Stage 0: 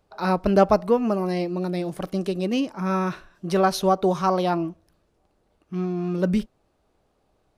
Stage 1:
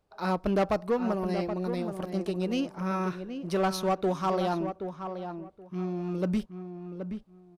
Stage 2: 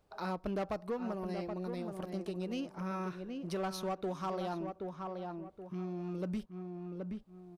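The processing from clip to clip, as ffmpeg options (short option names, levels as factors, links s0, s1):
-filter_complex "[0:a]asoftclip=type=tanh:threshold=0.2,aeval=exprs='0.2*(cos(1*acos(clip(val(0)/0.2,-1,1)))-cos(1*PI/2))+0.00708*(cos(7*acos(clip(val(0)/0.2,-1,1)))-cos(7*PI/2))':c=same,asplit=2[s0][s1];[s1]adelay=775,lowpass=f=1900:p=1,volume=0.398,asplit=2[s2][s3];[s3]adelay=775,lowpass=f=1900:p=1,volume=0.2,asplit=2[s4][s5];[s5]adelay=775,lowpass=f=1900:p=1,volume=0.2[s6];[s0][s2][s4][s6]amix=inputs=4:normalize=0,volume=0.562"
-af "acompressor=threshold=0.00447:ratio=2,volume=1.33"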